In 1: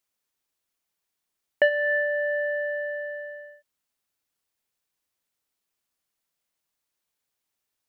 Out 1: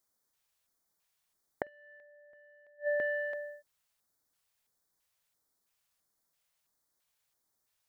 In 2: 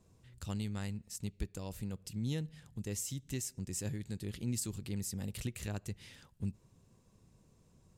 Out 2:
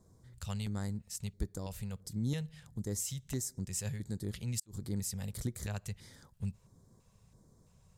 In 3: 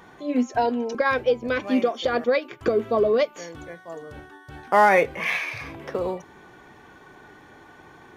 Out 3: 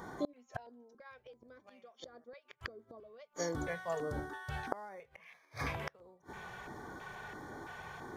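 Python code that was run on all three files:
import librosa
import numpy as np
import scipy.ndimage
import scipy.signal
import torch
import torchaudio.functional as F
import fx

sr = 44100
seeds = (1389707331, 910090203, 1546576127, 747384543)

y = fx.filter_lfo_notch(x, sr, shape='square', hz=1.5, low_hz=300.0, high_hz=2700.0, q=0.84)
y = fx.gate_flip(y, sr, shuts_db=-25.0, range_db=-34)
y = y * 10.0 ** (2.5 / 20.0)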